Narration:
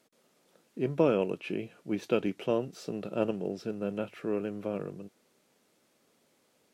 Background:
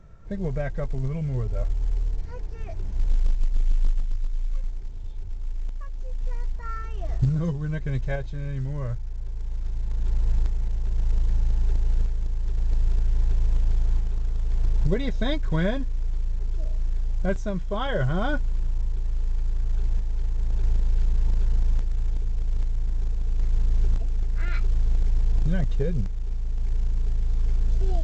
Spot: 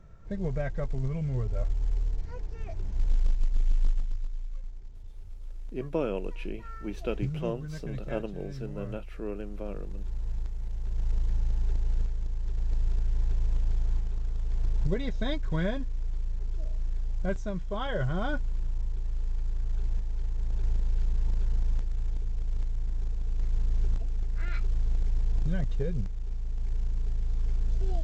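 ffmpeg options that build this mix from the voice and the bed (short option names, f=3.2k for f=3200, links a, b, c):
-filter_complex "[0:a]adelay=4950,volume=-4.5dB[a];[1:a]volume=2dB,afade=t=out:st=3.92:d=0.57:silence=0.446684,afade=t=in:st=10.47:d=0.59:silence=0.562341[b];[a][b]amix=inputs=2:normalize=0"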